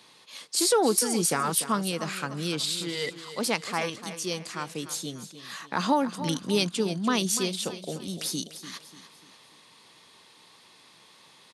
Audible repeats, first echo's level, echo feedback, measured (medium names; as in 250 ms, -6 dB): 3, -12.5 dB, 42%